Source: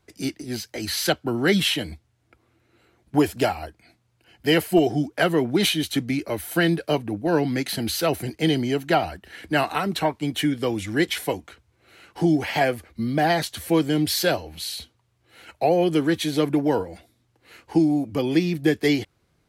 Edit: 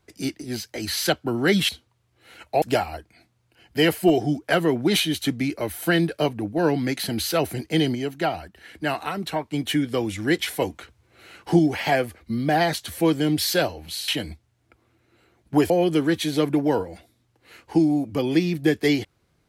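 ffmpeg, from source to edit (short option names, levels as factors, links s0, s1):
-filter_complex "[0:a]asplit=9[s0][s1][s2][s3][s4][s5][s6][s7][s8];[s0]atrim=end=1.692[s9];[s1]atrim=start=14.768:end=15.702[s10];[s2]atrim=start=3.308:end=8.642[s11];[s3]atrim=start=8.638:end=10.202,asetpts=PTS-STARTPTS,volume=0.631[s12];[s4]atrim=start=10.198:end=11.312[s13];[s5]atrim=start=11.308:end=12.282,asetpts=PTS-STARTPTS,volume=1.5[s14];[s6]atrim=start=12.278:end=14.772[s15];[s7]atrim=start=1.688:end=3.312[s16];[s8]atrim=start=15.698[s17];[s9][s10]acrossfade=d=0.004:c1=hsin:c2=hsin[s18];[s18][s11]acrossfade=d=0.004:c1=hsin:c2=hsin[s19];[s19][s12]acrossfade=d=0.004:c1=hsin:c2=hsin[s20];[s20][s13]acrossfade=d=0.004:c1=hsin:c2=hsin[s21];[s21][s14]acrossfade=d=0.004:c1=hsin:c2=hsin[s22];[s22][s15]acrossfade=d=0.004:c1=hsin:c2=hsin[s23];[s23][s16]acrossfade=d=0.004:c1=hsin:c2=hsin[s24];[s24][s17]acrossfade=d=0.004:c1=hsin:c2=hsin"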